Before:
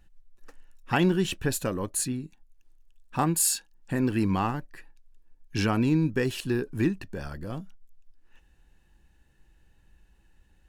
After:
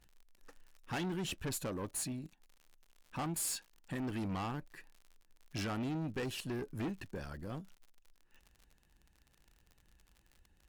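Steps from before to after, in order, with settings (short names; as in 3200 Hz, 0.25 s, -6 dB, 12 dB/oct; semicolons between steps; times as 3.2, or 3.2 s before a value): harmonic-percussive split percussive +4 dB; crackle 68/s -40 dBFS; tube stage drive 26 dB, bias 0.3; gain -8 dB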